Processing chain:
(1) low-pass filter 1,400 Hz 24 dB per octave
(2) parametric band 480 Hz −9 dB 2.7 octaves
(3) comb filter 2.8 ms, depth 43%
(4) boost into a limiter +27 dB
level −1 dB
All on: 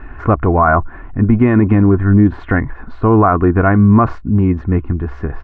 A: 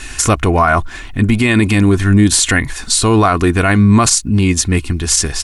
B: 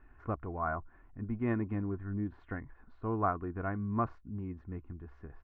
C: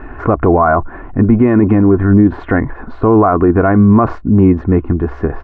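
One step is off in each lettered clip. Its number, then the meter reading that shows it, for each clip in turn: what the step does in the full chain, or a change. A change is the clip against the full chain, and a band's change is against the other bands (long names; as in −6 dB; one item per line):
1, 2 kHz band +6.0 dB
4, change in crest factor +7.5 dB
2, 500 Hz band +4.0 dB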